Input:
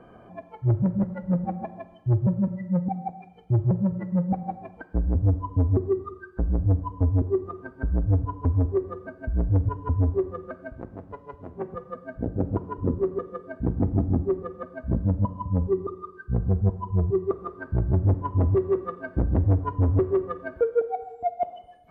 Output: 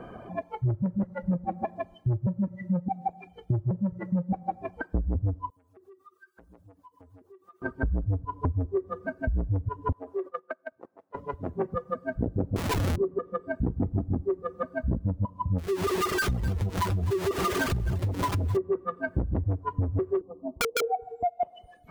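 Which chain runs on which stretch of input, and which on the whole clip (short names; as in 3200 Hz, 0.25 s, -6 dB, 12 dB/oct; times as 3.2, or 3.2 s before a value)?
5.5–7.62 differentiator + compressor 8:1, threshold -55 dBFS
9.92–11.15 gate -35 dBFS, range -14 dB + HPF 500 Hz + compressor, threshold -33 dBFS
12.56–12.96 block floating point 3-bit + LPF 1200 Hz + Schmitt trigger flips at -42 dBFS
15.58–18.57 zero-crossing step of -26 dBFS + compressor 4:1, threshold -25 dBFS + echo 0.257 s -14 dB
20.21–20.82 rippled Chebyshev low-pass 1100 Hz, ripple 9 dB + wrapped overs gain 26.5 dB
whole clip: reverb removal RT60 0.77 s; compressor 6:1, threshold -32 dBFS; gain +7.5 dB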